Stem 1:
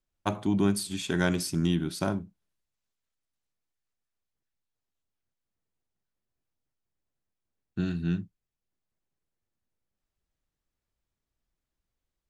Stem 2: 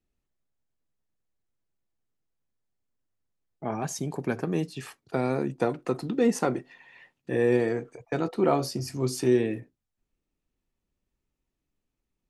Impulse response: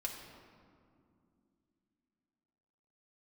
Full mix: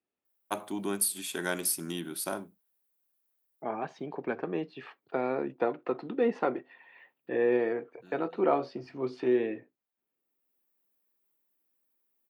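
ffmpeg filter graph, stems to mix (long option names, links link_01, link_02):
-filter_complex "[0:a]aemphasis=mode=production:type=50fm,adelay=250,volume=-2dB[link_01];[1:a]lowpass=frequency=3700:width=0.5412,lowpass=frequency=3700:width=1.3066,lowshelf=frequency=170:gain=3.5,volume=-1dB,asplit=2[link_02][link_03];[link_03]apad=whole_len=553225[link_04];[link_01][link_04]sidechaincompress=threshold=-42dB:ratio=12:attack=5.4:release=697[link_05];[link_05][link_02]amix=inputs=2:normalize=0,highpass=360,highshelf=frequency=4200:gain=-10.5,aexciter=amount=3.2:drive=6.8:freq=9100"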